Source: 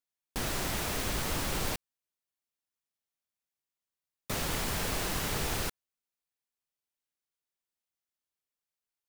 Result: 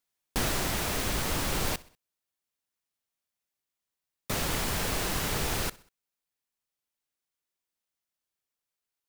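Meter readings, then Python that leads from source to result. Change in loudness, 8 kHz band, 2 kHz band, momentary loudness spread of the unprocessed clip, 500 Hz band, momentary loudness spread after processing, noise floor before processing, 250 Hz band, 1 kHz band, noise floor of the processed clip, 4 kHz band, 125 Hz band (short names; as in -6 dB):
+3.0 dB, +3.0 dB, +3.0 dB, 5 LU, +3.0 dB, 5 LU, under -85 dBFS, +3.0 dB, +3.0 dB, under -85 dBFS, +3.0 dB, +3.0 dB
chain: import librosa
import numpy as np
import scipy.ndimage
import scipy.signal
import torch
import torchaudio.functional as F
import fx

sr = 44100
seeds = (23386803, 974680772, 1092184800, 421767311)

p1 = fx.rider(x, sr, range_db=5, speed_s=0.5)
p2 = p1 + fx.echo_feedback(p1, sr, ms=64, feedback_pct=49, wet_db=-22, dry=0)
y = F.gain(torch.from_numpy(p2), 3.5).numpy()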